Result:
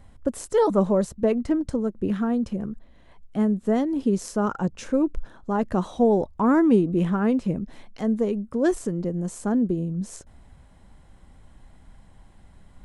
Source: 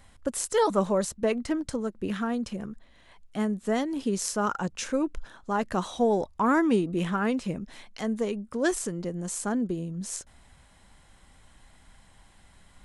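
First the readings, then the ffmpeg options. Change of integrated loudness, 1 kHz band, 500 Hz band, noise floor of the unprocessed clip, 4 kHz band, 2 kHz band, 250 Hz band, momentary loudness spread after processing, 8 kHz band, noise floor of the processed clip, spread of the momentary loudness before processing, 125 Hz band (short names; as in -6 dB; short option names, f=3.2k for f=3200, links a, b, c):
+4.5 dB, 0.0 dB, +4.0 dB, -57 dBFS, n/a, -3.5 dB, +6.0 dB, 10 LU, -7.0 dB, -52 dBFS, 11 LU, +6.5 dB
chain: -af "tiltshelf=f=970:g=7"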